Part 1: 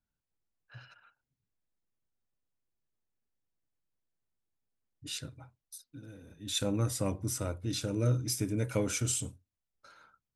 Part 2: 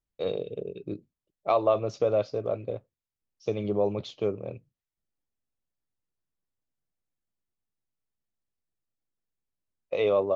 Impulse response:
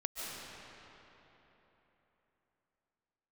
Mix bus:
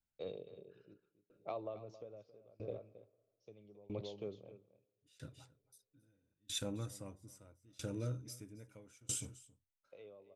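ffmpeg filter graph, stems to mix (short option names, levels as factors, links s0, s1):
-filter_complex "[0:a]bandreject=f=4200:w=17,volume=0.531,asplit=2[s0][s1];[s1]volume=0.158[s2];[1:a]equalizer=f=1200:w=1.5:g=-3.5,acrossover=split=430[s3][s4];[s4]acompressor=threshold=0.0251:ratio=2.5[s5];[s3][s5]amix=inputs=2:normalize=0,volume=0.398,asplit=3[s6][s7][s8];[s7]volume=0.075[s9];[s8]volume=0.355[s10];[2:a]atrim=start_sample=2205[s11];[s9][s11]afir=irnorm=-1:irlink=0[s12];[s2][s10]amix=inputs=2:normalize=0,aecho=0:1:271:1[s13];[s0][s6][s12][s13]amix=inputs=4:normalize=0,aeval=exprs='val(0)*pow(10,-28*if(lt(mod(0.77*n/s,1),2*abs(0.77)/1000),1-mod(0.77*n/s,1)/(2*abs(0.77)/1000),(mod(0.77*n/s,1)-2*abs(0.77)/1000)/(1-2*abs(0.77)/1000))/20)':c=same"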